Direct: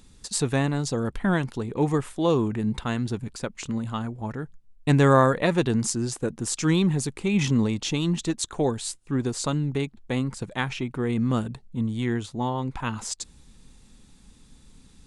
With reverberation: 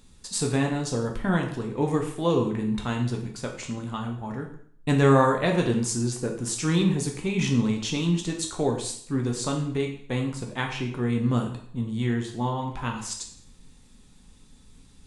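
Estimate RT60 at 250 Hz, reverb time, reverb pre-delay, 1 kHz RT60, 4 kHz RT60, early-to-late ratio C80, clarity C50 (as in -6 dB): 0.65 s, 0.55 s, 4 ms, 0.60 s, 0.55 s, 10.5 dB, 7.5 dB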